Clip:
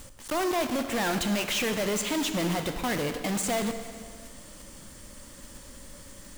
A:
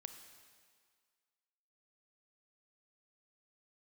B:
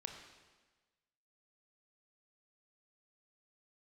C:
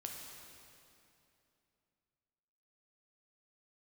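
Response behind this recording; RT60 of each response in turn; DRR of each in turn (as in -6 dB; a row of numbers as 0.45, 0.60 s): A; 1.9, 1.3, 2.8 s; 7.0, 3.5, 0.0 dB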